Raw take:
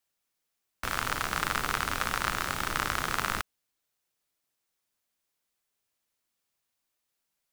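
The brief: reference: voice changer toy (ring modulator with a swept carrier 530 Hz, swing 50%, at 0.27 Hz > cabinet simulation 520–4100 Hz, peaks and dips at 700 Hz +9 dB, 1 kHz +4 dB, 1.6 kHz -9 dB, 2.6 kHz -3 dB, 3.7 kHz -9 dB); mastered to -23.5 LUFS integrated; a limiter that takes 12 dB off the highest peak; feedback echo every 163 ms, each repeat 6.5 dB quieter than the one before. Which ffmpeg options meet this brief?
-af "alimiter=limit=0.1:level=0:latency=1,aecho=1:1:163|326|489|652|815|978:0.473|0.222|0.105|0.0491|0.0231|0.0109,aeval=exprs='val(0)*sin(2*PI*530*n/s+530*0.5/0.27*sin(2*PI*0.27*n/s))':c=same,highpass=520,equalizer=f=700:t=q:w=4:g=9,equalizer=f=1000:t=q:w=4:g=4,equalizer=f=1600:t=q:w=4:g=-9,equalizer=f=2600:t=q:w=4:g=-3,equalizer=f=3700:t=q:w=4:g=-9,lowpass=f=4100:w=0.5412,lowpass=f=4100:w=1.3066,volume=6.68"

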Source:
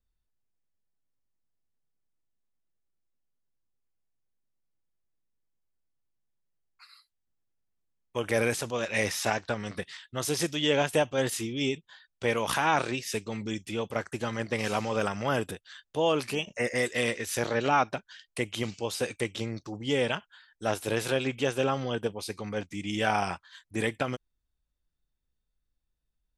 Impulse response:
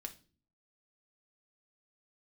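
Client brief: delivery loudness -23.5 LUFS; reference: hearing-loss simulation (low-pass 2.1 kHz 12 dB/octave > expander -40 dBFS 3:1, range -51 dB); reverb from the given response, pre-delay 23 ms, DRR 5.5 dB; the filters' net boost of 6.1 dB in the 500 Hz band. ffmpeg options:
-filter_complex "[0:a]equalizer=f=500:t=o:g=7,asplit=2[s0][s1];[1:a]atrim=start_sample=2205,adelay=23[s2];[s1][s2]afir=irnorm=-1:irlink=0,volume=0.794[s3];[s0][s3]amix=inputs=2:normalize=0,lowpass=2100,agate=range=0.00282:threshold=0.01:ratio=3,volume=1.33"

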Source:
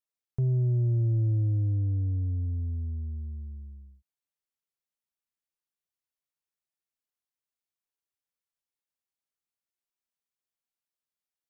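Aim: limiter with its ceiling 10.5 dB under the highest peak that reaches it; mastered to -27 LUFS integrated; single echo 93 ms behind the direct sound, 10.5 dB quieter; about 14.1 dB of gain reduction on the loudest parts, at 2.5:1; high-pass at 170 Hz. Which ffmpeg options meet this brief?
-af "highpass=170,acompressor=threshold=0.00251:ratio=2.5,alimiter=level_in=11.2:limit=0.0631:level=0:latency=1,volume=0.0891,aecho=1:1:93:0.299,volume=15.8"

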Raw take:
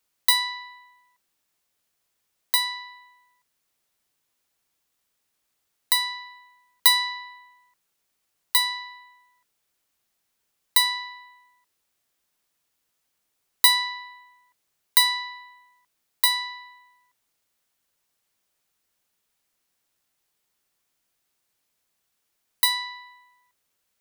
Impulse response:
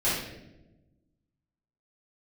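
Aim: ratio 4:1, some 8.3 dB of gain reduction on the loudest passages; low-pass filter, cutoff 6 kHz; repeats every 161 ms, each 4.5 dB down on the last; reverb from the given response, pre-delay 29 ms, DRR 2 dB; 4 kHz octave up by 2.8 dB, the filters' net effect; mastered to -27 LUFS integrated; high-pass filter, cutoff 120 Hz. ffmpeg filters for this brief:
-filter_complex "[0:a]highpass=120,lowpass=6000,equalizer=f=4000:t=o:g=3.5,acompressor=threshold=0.0708:ratio=4,aecho=1:1:161|322|483|644|805|966|1127|1288|1449:0.596|0.357|0.214|0.129|0.0772|0.0463|0.0278|0.0167|0.01,asplit=2[s0][s1];[1:a]atrim=start_sample=2205,adelay=29[s2];[s1][s2]afir=irnorm=-1:irlink=0,volume=0.2[s3];[s0][s3]amix=inputs=2:normalize=0,volume=0.891"

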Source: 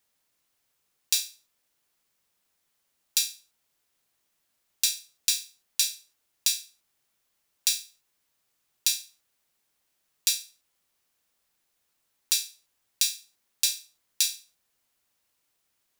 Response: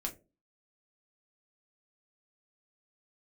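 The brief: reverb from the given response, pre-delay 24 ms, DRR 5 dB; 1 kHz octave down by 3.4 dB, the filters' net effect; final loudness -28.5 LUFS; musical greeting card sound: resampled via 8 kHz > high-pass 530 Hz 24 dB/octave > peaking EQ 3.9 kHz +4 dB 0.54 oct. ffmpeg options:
-filter_complex "[0:a]equalizer=f=1000:t=o:g=-4.5,asplit=2[s0][s1];[1:a]atrim=start_sample=2205,adelay=24[s2];[s1][s2]afir=irnorm=-1:irlink=0,volume=0.531[s3];[s0][s3]amix=inputs=2:normalize=0,aresample=8000,aresample=44100,highpass=f=530:w=0.5412,highpass=f=530:w=1.3066,equalizer=f=3900:t=o:w=0.54:g=4,volume=2.11"

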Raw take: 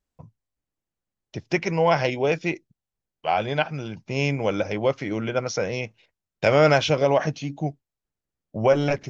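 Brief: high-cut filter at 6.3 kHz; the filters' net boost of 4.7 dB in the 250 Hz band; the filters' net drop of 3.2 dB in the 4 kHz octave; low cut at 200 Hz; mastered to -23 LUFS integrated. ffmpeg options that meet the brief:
-af "highpass=200,lowpass=6300,equalizer=f=250:t=o:g=8.5,equalizer=f=4000:t=o:g=-4,volume=0.944"

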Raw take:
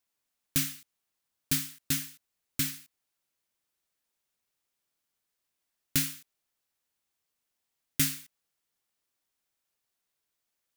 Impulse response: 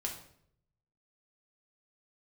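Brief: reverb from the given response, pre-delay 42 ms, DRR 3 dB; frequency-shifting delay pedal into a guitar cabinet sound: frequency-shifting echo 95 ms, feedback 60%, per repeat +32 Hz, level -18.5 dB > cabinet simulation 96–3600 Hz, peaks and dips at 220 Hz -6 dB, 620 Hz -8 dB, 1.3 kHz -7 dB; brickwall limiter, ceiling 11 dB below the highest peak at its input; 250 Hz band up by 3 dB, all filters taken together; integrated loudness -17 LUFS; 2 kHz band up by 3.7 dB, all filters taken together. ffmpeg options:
-filter_complex "[0:a]equalizer=f=250:t=o:g=5.5,equalizer=f=2000:t=o:g=5.5,alimiter=limit=0.1:level=0:latency=1,asplit=2[s0][s1];[1:a]atrim=start_sample=2205,adelay=42[s2];[s1][s2]afir=irnorm=-1:irlink=0,volume=0.631[s3];[s0][s3]amix=inputs=2:normalize=0,asplit=6[s4][s5][s6][s7][s8][s9];[s5]adelay=95,afreqshift=32,volume=0.119[s10];[s6]adelay=190,afreqshift=64,volume=0.0716[s11];[s7]adelay=285,afreqshift=96,volume=0.0427[s12];[s8]adelay=380,afreqshift=128,volume=0.0257[s13];[s9]adelay=475,afreqshift=160,volume=0.0155[s14];[s4][s10][s11][s12][s13][s14]amix=inputs=6:normalize=0,highpass=96,equalizer=f=220:t=q:w=4:g=-6,equalizer=f=620:t=q:w=4:g=-8,equalizer=f=1300:t=q:w=4:g=-7,lowpass=f=3600:w=0.5412,lowpass=f=3600:w=1.3066,volume=15.8"

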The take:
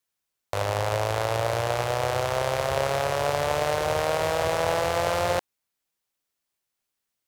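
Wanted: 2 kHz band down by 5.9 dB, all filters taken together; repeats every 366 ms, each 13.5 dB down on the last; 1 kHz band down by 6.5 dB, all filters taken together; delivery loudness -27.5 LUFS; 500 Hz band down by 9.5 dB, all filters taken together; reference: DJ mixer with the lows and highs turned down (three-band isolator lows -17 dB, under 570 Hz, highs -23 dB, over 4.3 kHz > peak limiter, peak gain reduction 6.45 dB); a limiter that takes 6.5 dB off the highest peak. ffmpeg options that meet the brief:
-filter_complex "[0:a]equalizer=f=500:t=o:g=-4,equalizer=f=1000:t=o:g=-4,equalizer=f=2000:t=o:g=-5.5,alimiter=limit=0.126:level=0:latency=1,acrossover=split=570 4300:gain=0.141 1 0.0708[s0][s1][s2];[s0][s1][s2]amix=inputs=3:normalize=0,aecho=1:1:366|732:0.211|0.0444,volume=5.01,alimiter=limit=0.15:level=0:latency=1"

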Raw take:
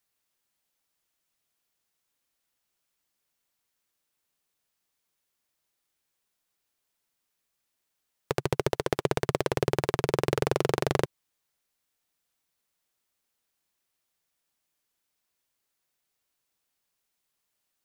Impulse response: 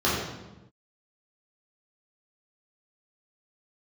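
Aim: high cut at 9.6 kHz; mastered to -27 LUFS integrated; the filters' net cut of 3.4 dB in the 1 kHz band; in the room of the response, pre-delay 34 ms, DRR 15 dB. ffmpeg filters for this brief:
-filter_complex "[0:a]lowpass=9600,equalizer=f=1000:t=o:g=-4.5,asplit=2[s0][s1];[1:a]atrim=start_sample=2205,adelay=34[s2];[s1][s2]afir=irnorm=-1:irlink=0,volume=0.0282[s3];[s0][s3]amix=inputs=2:normalize=0,volume=1.33"

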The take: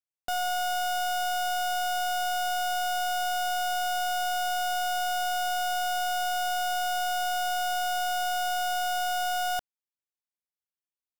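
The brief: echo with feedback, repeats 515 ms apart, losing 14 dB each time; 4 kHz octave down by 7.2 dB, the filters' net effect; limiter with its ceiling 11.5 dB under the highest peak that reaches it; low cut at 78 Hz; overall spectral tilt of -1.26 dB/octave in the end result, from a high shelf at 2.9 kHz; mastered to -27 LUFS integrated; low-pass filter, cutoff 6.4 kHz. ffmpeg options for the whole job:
-af "highpass=78,lowpass=6400,highshelf=f=2900:g=-7,equalizer=f=4000:t=o:g=-5,alimiter=level_in=4.47:limit=0.0631:level=0:latency=1,volume=0.224,aecho=1:1:515|1030:0.2|0.0399,volume=4.73"

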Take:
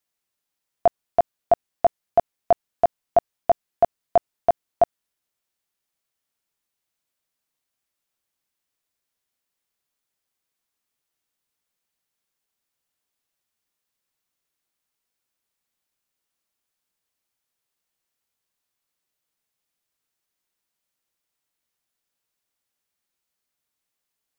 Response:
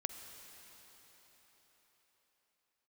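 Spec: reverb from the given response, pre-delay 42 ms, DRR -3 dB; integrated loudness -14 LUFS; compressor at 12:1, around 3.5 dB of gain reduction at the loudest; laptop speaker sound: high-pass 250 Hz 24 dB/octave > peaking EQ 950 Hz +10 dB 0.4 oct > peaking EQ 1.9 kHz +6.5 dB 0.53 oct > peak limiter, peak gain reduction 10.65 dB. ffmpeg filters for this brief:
-filter_complex "[0:a]acompressor=threshold=0.178:ratio=12,asplit=2[s0][s1];[1:a]atrim=start_sample=2205,adelay=42[s2];[s1][s2]afir=irnorm=-1:irlink=0,volume=1.5[s3];[s0][s3]amix=inputs=2:normalize=0,highpass=f=250:w=0.5412,highpass=f=250:w=1.3066,equalizer=f=950:t=o:w=0.4:g=10,equalizer=f=1900:t=o:w=0.53:g=6.5,volume=3.98,alimiter=limit=0.841:level=0:latency=1"

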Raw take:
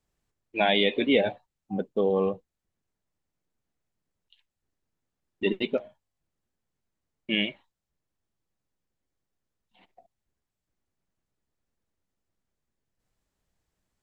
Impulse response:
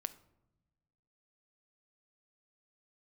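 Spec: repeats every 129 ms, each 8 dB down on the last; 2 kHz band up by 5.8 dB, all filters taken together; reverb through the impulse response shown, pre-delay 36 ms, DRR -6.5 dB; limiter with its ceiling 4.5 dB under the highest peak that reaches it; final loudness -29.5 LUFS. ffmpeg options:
-filter_complex "[0:a]equalizer=f=2000:t=o:g=7,alimiter=limit=0.316:level=0:latency=1,aecho=1:1:129|258|387|516|645:0.398|0.159|0.0637|0.0255|0.0102,asplit=2[s0][s1];[1:a]atrim=start_sample=2205,adelay=36[s2];[s1][s2]afir=irnorm=-1:irlink=0,volume=2.51[s3];[s0][s3]amix=inputs=2:normalize=0,volume=0.282"

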